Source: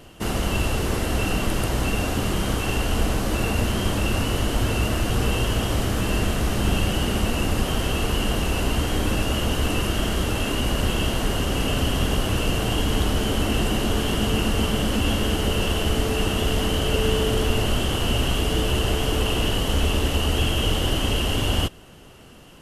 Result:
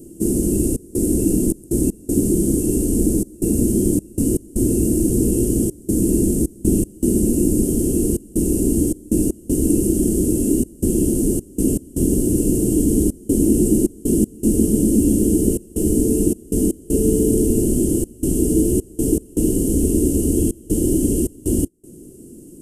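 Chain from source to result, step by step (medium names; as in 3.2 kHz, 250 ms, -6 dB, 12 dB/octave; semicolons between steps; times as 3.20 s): FFT filter 110 Hz 0 dB, 340 Hz +15 dB, 840 Hz -24 dB, 1.3 kHz -29 dB, 3.5 kHz -24 dB, 8.5 kHz +10 dB, 13 kHz +2 dB; trance gate "xxxx.xxx.x.xx" 79 bpm -24 dB; treble shelf 7.5 kHz +6.5 dB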